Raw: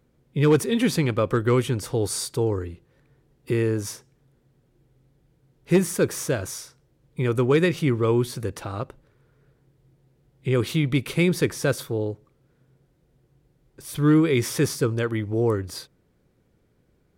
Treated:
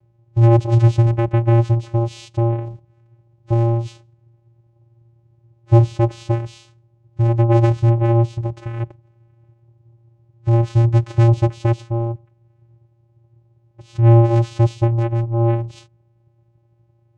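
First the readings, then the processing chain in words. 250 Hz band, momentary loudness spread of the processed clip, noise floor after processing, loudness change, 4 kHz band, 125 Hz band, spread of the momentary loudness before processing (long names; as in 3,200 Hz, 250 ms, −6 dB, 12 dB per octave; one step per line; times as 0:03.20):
+0.5 dB, 13 LU, −59 dBFS, +6.0 dB, can't be measured, +11.5 dB, 14 LU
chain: channel vocoder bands 4, square 116 Hz
level +7.5 dB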